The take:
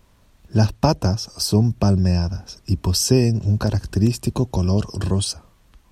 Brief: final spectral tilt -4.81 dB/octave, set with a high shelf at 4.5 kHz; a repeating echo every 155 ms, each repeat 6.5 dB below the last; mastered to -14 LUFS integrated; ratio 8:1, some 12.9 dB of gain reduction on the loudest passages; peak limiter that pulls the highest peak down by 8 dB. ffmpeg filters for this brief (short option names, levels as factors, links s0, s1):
-af "highshelf=f=4500:g=6.5,acompressor=threshold=0.0631:ratio=8,alimiter=limit=0.0944:level=0:latency=1,aecho=1:1:155|310|465|620|775|930:0.473|0.222|0.105|0.0491|0.0231|0.0109,volume=6.31"